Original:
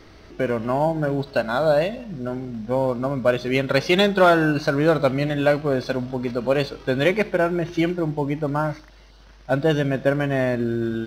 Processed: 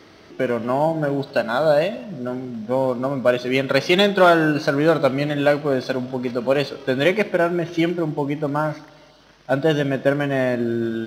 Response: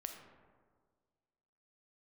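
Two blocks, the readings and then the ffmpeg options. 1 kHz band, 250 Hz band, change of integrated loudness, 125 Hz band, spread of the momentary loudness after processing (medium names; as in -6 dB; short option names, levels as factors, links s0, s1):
+1.5 dB, +1.0 dB, +1.5 dB, -1.0 dB, 9 LU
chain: -filter_complex "[0:a]highpass=140,asplit=2[s0][s1];[s1]equalizer=f=3200:t=o:w=0.26:g=10.5[s2];[1:a]atrim=start_sample=2205[s3];[s2][s3]afir=irnorm=-1:irlink=0,volume=0.316[s4];[s0][s4]amix=inputs=2:normalize=0"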